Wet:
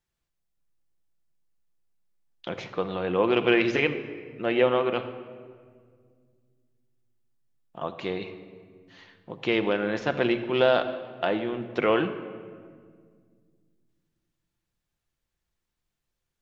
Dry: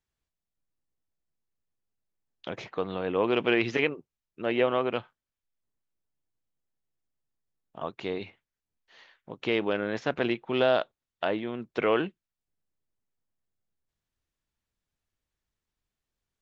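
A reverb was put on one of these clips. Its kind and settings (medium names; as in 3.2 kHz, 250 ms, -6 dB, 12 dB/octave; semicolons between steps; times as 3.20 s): simulated room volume 2900 m³, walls mixed, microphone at 0.85 m; trim +2 dB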